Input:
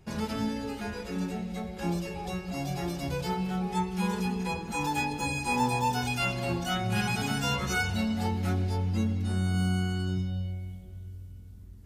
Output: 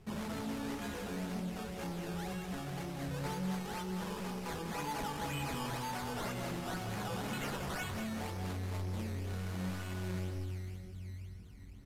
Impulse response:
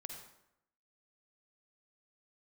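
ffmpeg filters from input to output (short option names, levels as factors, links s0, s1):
-filter_complex "[0:a]asettb=1/sr,asplit=3[s0][s1][s2];[s0]atrim=end=2.124[s3];[s1]atrim=start=2.12:end=3.24,asetpts=PTS-STARTPTS,afade=t=in:d=0.004:c=qsin,afade=t=out:st=1.116:d=0.004:c=qsin,acompressor=threshold=0.0224:ratio=6[s4];[s2]atrim=start=3.236[s5];[s3][s4]acrossfade=d=0.004:c1=hsin:c2=qsin[s6];[s6][s5]acrossfade=d=0.004:c1=qsin:c2=hsin,asettb=1/sr,asplit=3[s7][s8][s9];[s7]atrim=end=7.304[s10];[s8]atrim=start=7.3:end=7.91,asetpts=PTS-STARTPTS,afade=t=in:d=0.004:c=qsin,afade=t=out:st=0.606:d=0.004:c=qsin,aemphasis=mode=production:type=50kf[s11];[s9]atrim=start=7.906[s12];[s10][s11]acrossfade=d=0.004:c1=hsin:c2=qsin[s13];[s13][s12]acrossfade=d=0.004:c1=qsin:c2=hsin,alimiter=limit=0.0794:level=0:latency=1:release=330,acrusher=samples=15:mix=1:aa=0.000001:lfo=1:lforange=15:lforate=2,asoftclip=type=tanh:threshold=0.0168,flanger=delay=4.6:depth=2.9:regen=68:speed=0.81:shape=sinusoidal,aecho=1:1:192|384|576|768:0.422|0.127|0.038|0.0114,volume=1.5" -ar 32000 -c:a aac -b:a 64k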